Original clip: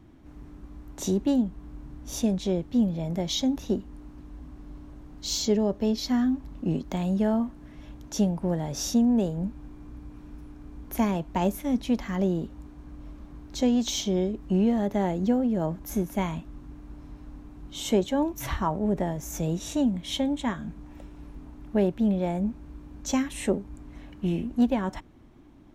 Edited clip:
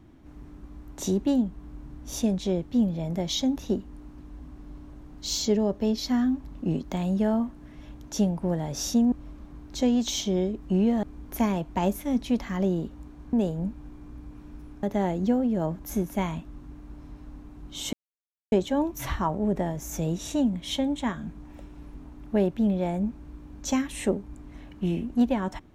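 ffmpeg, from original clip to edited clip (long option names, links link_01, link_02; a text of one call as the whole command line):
ffmpeg -i in.wav -filter_complex "[0:a]asplit=6[link_01][link_02][link_03][link_04][link_05][link_06];[link_01]atrim=end=9.122[link_07];[link_02]atrim=start=12.918:end=14.832[link_08];[link_03]atrim=start=10.618:end=12.922[link_09];[link_04]atrim=start=9.118:end=10.622[link_10];[link_05]atrim=start=14.828:end=17.93,asetpts=PTS-STARTPTS,afade=type=out:start_time=3.098:duration=0.004:curve=hsin,apad=pad_dur=0.59[link_11];[link_06]atrim=start=17.93,asetpts=PTS-STARTPTS,afade=type=in:duration=0.004:curve=hsin[link_12];[link_07][link_08]acrossfade=duration=0.004:curve1=hsin:curve2=hsin[link_13];[link_13][link_09]acrossfade=duration=0.004:curve1=hsin:curve2=hsin[link_14];[link_14][link_10]acrossfade=duration=0.004:curve1=hsin:curve2=hsin[link_15];[link_11][link_12]concat=n=2:v=0:a=1[link_16];[link_15][link_16]acrossfade=duration=0.004:curve1=hsin:curve2=hsin" out.wav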